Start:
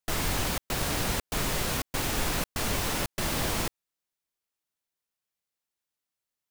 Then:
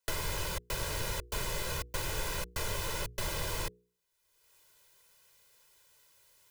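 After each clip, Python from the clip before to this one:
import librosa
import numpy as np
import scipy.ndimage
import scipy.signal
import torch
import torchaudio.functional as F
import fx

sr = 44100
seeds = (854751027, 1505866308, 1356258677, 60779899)

y = fx.hum_notches(x, sr, base_hz=60, count=8)
y = y + 0.87 * np.pad(y, (int(2.0 * sr / 1000.0), 0))[:len(y)]
y = fx.band_squash(y, sr, depth_pct=100)
y = y * 10.0 ** (-9.0 / 20.0)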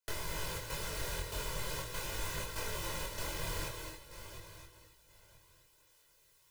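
y = fx.reverse_delay_fb(x, sr, ms=487, feedback_pct=43, wet_db=-10.0)
y = fx.rev_gated(y, sr, seeds[0], gate_ms=310, shape='rising', drr_db=5.0)
y = fx.chorus_voices(y, sr, voices=2, hz=0.42, base_ms=22, depth_ms=4.0, mix_pct=45)
y = y * 10.0 ** (-2.0 / 20.0)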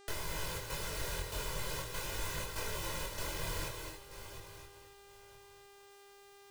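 y = fx.dmg_buzz(x, sr, base_hz=400.0, harmonics=23, level_db=-59.0, tilt_db=-5, odd_only=False)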